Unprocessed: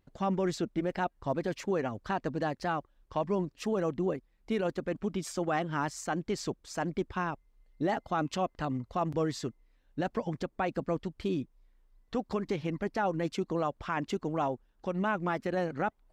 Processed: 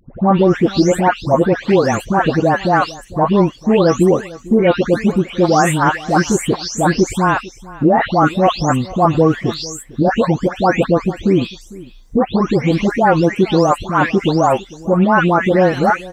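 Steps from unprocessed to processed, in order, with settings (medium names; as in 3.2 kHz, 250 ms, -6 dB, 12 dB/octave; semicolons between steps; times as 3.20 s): delay that grows with frequency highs late, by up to 414 ms; on a send: delay 450 ms -20.5 dB; on the sum: loudness maximiser +20.5 dB; trim -1 dB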